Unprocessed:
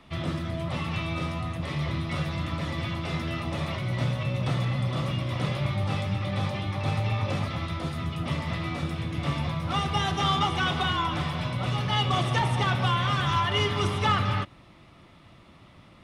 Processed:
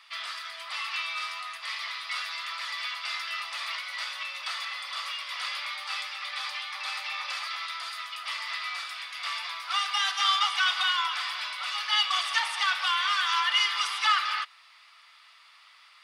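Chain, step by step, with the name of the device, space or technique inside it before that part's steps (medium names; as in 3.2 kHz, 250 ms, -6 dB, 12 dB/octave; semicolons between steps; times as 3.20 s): headphones lying on a table (high-pass 1.2 kHz 24 dB/octave; peaking EQ 4.7 kHz +11 dB 0.2 oct); trim +4 dB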